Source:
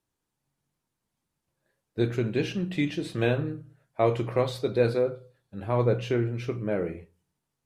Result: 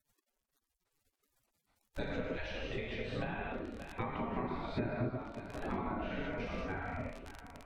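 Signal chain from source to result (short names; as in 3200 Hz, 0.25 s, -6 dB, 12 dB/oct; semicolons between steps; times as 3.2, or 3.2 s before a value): bin magnitudes rounded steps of 15 dB; dark delay 0.574 s, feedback 48%, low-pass 2800 Hz, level -22 dB; non-linear reverb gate 0.24 s flat, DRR -3.5 dB; crackle 64/s -32 dBFS; spectral gate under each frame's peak -15 dB weak; treble ducked by the level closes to 2200 Hz, closed at -29.5 dBFS; compressor 5:1, threshold -44 dBFS, peak gain reduction 15.5 dB; tilt -3 dB/oct; gain +5 dB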